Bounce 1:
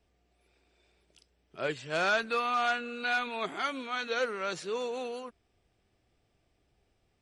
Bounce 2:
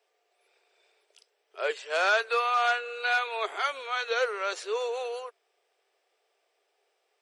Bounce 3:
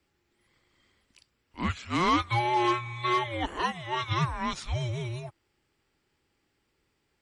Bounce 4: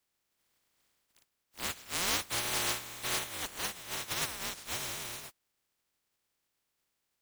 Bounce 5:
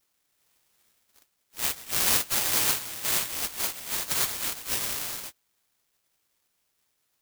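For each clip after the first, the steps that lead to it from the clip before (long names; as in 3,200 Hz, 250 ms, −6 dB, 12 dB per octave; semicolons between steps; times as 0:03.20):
elliptic high-pass filter 420 Hz, stop band 50 dB; level +4 dB
frequency shifter −360 Hz
compressing power law on the bin magnitudes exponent 0.16; level −7 dB
tape wow and flutter 130 cents; bad sample-rate conversion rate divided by 8×, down none, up zero stuff; level −1 dB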